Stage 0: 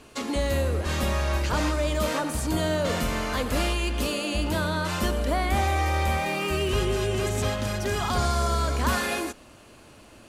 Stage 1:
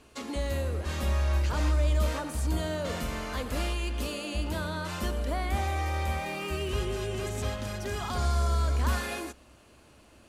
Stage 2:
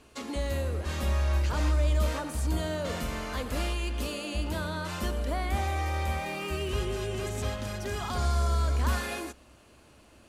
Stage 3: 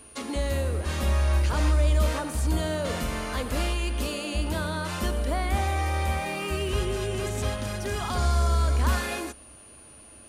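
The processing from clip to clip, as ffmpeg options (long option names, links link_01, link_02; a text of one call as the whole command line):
ffmpeg -i in.wav -af "equalizer=frequency=66:width_type=o:width=0.22:gain=11.5,volume=-7dB" out.wav
ffmpeg -i in.wav -af anull out.wav
ffmpeg -i in.wav -af "aeval=exprs='val(0)+0.00251*sin(2*PI*9500*n/s)':channel_layout=same,volume=3.5dB" out.wav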